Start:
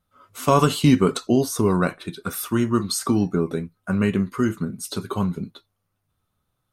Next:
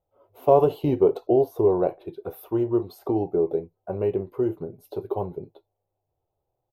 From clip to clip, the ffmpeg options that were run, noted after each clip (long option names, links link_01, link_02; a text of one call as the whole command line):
ffmpeg -i in.wav -af "firequalizer=gain_entry='entry(130,0);entry(210,-13);entry(360,10);entry(810,11);entry(1200,-13);entry(1800,-15);entry(2600,-10);entry(5800,-23);entry(8300,-28);entry(13000,-4)':delay=0.05:min_phase=1,volume=-6.5dB" out.wav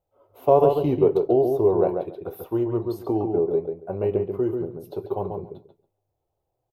ffmpeg -i in.wav -filter_complex "[0:a]asplit=2[link_01][link_02];[link_02]adelay=139,lowpass=frequency=2100:poles=1,volume=-4.5dB,asplit=2[link_03][link_04];[link_04]adelay=139,lowpass=frequency=2100:poles=1,volume=0.18,asplit=2[link_05][link_06];[link_06]adelay=139,lowpass=frequency=2100:poles=1,volume=0.18[link_07];[link_01][link_03][link_05][link_07]amix=inputs=4:normalize=0" out.wav